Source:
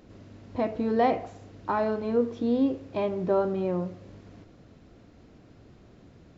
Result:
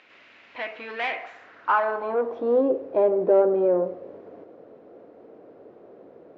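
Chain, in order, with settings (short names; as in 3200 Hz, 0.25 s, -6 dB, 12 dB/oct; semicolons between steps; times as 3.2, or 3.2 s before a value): overdrive pedal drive 18 dB, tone 2200 Hz, clips at -13 dBFS; band-pass sweep 2400 Hz -> 480 Hz, 1.13–2.72; gain +7 dB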